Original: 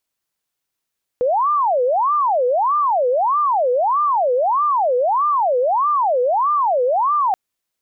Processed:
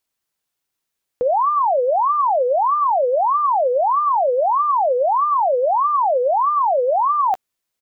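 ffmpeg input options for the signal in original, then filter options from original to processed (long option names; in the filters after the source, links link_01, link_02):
-f lavfi -i "aevalsrc='0.2*sin(2*PI*(844.5*t-355.5/(2*PI*1.6)*sin(2*PI*1.6*t)))':duration=6.13:sample_rate=44100"
-filter_complex "[0:a]asplit=2[link_01][link_02];[link_02]adelay=13,volume=-13dB[link_03];[link_01][link_03]amix=inputs=2:normalize=0"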